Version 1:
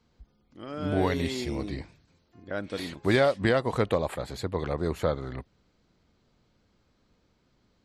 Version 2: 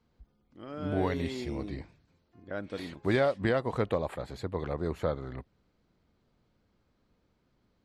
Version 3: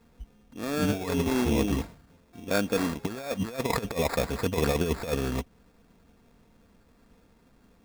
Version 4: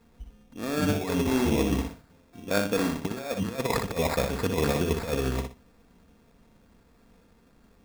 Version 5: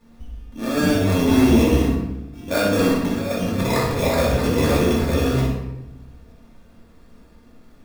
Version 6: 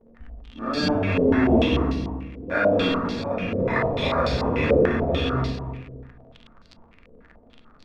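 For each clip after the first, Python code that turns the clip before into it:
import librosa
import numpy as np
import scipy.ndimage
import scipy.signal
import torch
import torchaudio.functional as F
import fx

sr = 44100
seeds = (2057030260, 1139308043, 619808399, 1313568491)

y1 = fx.high_shelf(x, sr, hz=3600.0, db=-8.0)
y1 = y1 * 10.0 ** (-3.5 / 20.0)
y2 = y1 + 0.41 * np.pad(y1, (int(4.3 * sr / 1000.0), 0))[:len(y1)]
y2 = fx.over_compress(y2, sr, threshold_db=-33.0, ratio=-0.5)
y2 = fx.sample_hold(y2, sr, seeds[0], rate_hz=3000.0, jitter_pct=0)
y2 = y2 * 10.0 ** (7.5 / 20.0)
y3 = fx.echo_feedback(y2, sr, ms=61, feedback_pct=24, wet_db=-6.0)
y4 = fx.room_shoebox(y3, sr, seeds[1], volume_m3=340.0, walls='mixed', distance_m=2.5)
y5 = fx.echo_feedback(y4, sr, ms=266, feedback_pct=27, wet_db=-13.0)
y5 = fx.dmg_crackle(y5, sr, seeds[2], per_s=37.0, level_db=-27.0)
y5 = fx.filter_held_lowpass(y5, sr, hz=6.8, low_hz=500.0, high_hz=4500.0)
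y5 = y5 * 10.0 ** (-5.5 / 20.0)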